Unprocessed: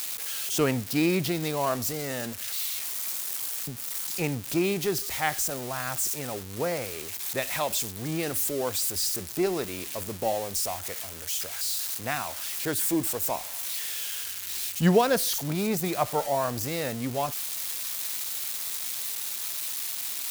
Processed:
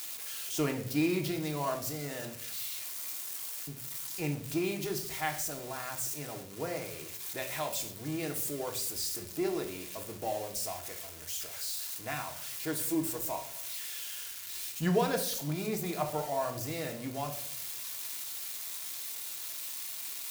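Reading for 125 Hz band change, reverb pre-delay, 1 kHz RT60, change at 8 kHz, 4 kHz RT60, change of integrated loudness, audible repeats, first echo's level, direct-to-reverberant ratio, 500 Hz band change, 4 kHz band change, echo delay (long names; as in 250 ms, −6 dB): −5.5 dB, 3 ms, 0.50 s, −7.0 dB, 0.50 s, −6.5 dB, no echo audible, no echo audible, 2.5 dB, −6.5 dB, −7.0 dB, no echo audible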